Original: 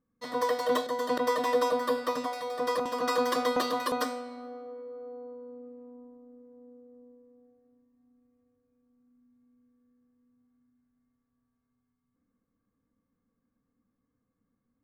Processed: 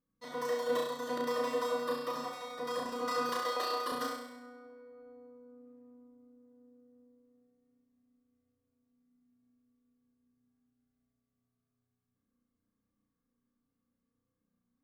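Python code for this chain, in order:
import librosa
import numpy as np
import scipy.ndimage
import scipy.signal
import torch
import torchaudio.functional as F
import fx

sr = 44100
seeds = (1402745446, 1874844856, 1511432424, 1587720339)

p1 = fx.highpass(x, sr, hz=360.0, slope=24, at=(3.29, 3.86))
p2 = p1 + fx.room_flutter(p1, sr, wall_m=5.7, rt60_s=0.79, dry=0)
y = p2 * librosa.db_to_amplitude(-8.5)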